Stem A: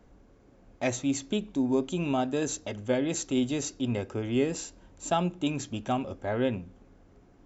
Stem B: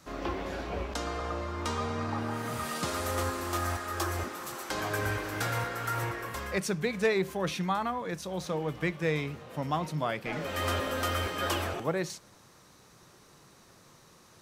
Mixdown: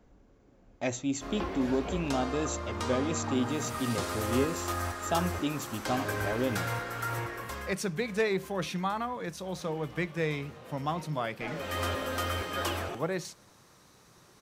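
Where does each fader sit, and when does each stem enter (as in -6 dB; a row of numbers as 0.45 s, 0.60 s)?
-3.0 dB, -1.5 dB; 0.00 s, 1.15 s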